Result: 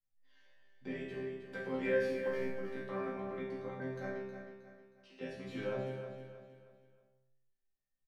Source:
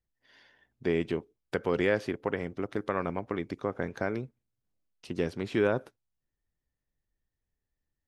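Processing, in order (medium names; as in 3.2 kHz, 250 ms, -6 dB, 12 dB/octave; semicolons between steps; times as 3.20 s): 2.00–2.51 s: companding laws mixed up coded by mu; 4.10–5.21 s: band-pass 660–4600 Hz; chord resonator C3 fifth, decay 0.71 s; feedback delay 315 ms, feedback 38%, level -9 dB; simulated room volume 620 m³, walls furnished, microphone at 2.1 m; trim +5.5 dB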